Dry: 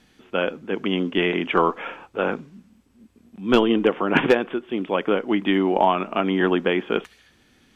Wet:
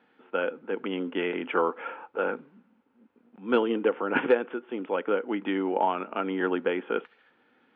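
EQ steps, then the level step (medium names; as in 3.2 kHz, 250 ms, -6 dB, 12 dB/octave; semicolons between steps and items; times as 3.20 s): dynamic bell 880 Hz, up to -7 dB, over -34 dBFS, Q 0.94; cabinet simulation 240–3000 Hz, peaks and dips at 260 Hz +4 dB, 490 Hz +9 dB, 870 Hz +10 dB, 1.4 kHz +9 dB; -8.0 dB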